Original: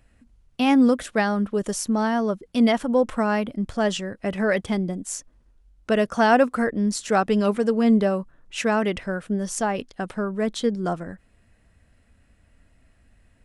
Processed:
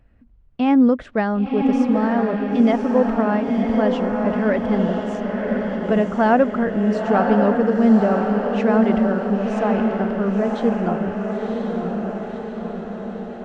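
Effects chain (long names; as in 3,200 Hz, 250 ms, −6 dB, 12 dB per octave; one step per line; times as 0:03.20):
head-to-tape spacing loss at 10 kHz 35 dB
feedback delay with all-pass diffusion 1,025 ms, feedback 60%, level −3 dB
level +3.5 dB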